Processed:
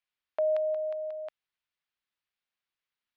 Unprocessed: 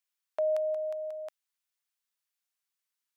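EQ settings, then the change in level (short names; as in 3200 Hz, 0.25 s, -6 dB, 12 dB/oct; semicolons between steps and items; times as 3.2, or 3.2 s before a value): air absorption 360 m; low shelf 370 Hz +5 dB; high shelf 2000 Hz +12 dB; 0.0 dB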